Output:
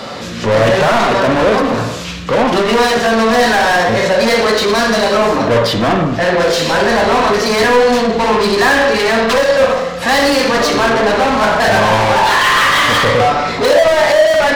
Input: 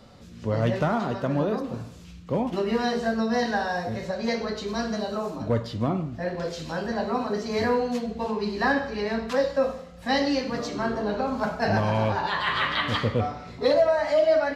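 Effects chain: overdrive pedal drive 31 dB, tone 4.9 kHz, clips at -11.5 dBFS; reverberation, pre-delay 44 ms, DRR 6.5 dB; trim +5.5 dB

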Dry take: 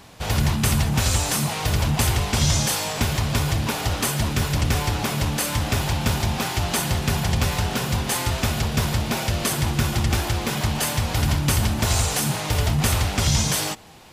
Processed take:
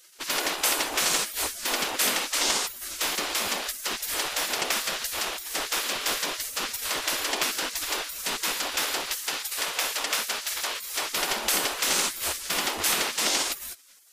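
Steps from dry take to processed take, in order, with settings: spectral gate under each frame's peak -20 dB weak; 9.16–11.11 s: bass shelf 410 Hz -8.5 dB; trim +2.5 dB

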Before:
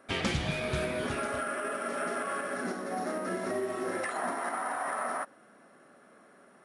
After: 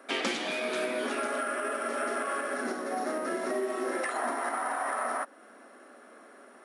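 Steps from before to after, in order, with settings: steep high-pass 230 Hz 48 dB/octave; in parallel at -1 dB: compression, threshold -43 dBFS, peak gain reduction 14.5 dB

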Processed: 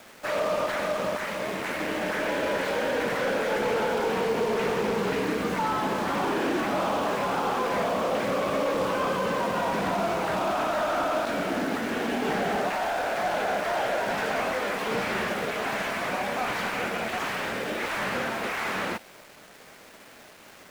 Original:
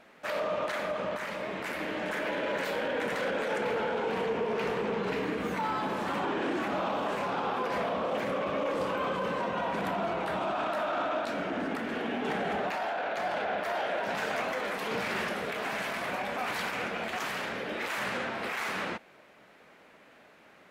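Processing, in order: companded quantiser 4-bit; slew-rate limiter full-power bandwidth 50 Hz; trim +4.5 dB

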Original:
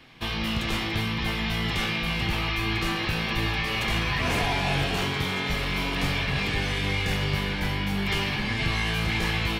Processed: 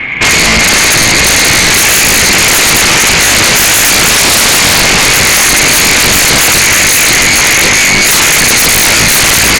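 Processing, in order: single-diode clipper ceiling -20 dBFS; in parallel at 0 dB: peak limiter -24.5 dBFS, peak gain reduction 10 dB; on the sum: resonant low-pass 2.2 kHz, resonance Q 7.7; hum notches 50/100/150/200 Hz; sine folder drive 19 dB, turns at -1.5 dBFS; on a send: delay 1018 ms -21.5 dB; on the sum: trim -2 dB

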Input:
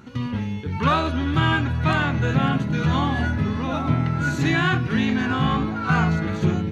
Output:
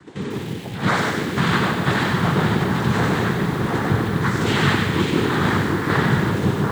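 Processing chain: noise-vocoded speech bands 6; on a send: two-band feedback delay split 1.5 kHz, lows 739 ms, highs 94 ms, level -3.5 dB; on the sum: bit-crushed delay 146 ms, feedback 35%, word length 6-bit, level -6.5 dB

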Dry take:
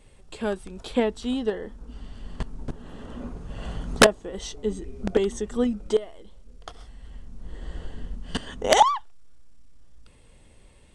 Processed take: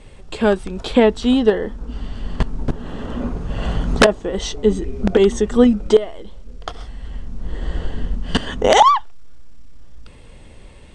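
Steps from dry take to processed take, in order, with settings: distance through air 59 m; loudness maximiser +13 dB; trim -1 dB

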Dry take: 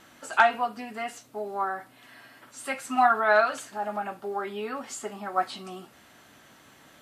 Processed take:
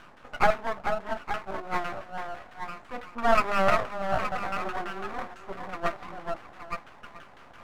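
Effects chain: repeats whose band climbs or falls 400 ms, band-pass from 750 Hz, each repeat 0.7 oct, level -4 dB; in parallel at -3 dB: word length cut 6-bit, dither triangular; on the sum: treble shelf 7.6 kHz +10.5 dB; reverse; upward compressor, threshold -21 dBFS; reverse; LFO low-pass saw down 6.5 Hz 810–1700 Hz; half-wave rectifier; speed mistake 48 kHz file played as 44.1 kHz; trim -7.5 dB

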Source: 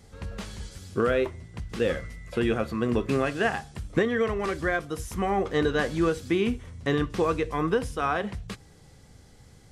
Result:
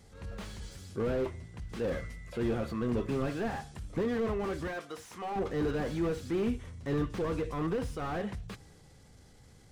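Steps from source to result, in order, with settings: 4.67–5.36 s: frequency weighting A; transient shaper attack -5 dB, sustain +2 dB; slew-rate limiter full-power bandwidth 28 Hz; trim -4 dB

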